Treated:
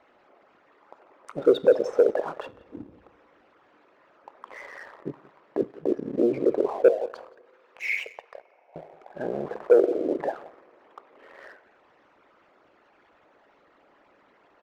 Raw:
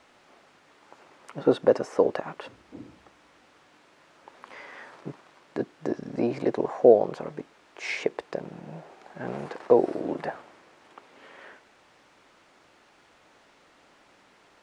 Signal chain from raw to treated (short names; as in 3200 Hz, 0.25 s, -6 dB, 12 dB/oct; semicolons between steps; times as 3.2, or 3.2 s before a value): formant sharpening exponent 2; 6.88–8.76 HPF 830 Hz 24 dB/oct; echo 0.176 s -18 dB; two-slope reverb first 0.52 s, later 3.7 s, from -20 dB, DRR 13 dB; sample leveller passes 1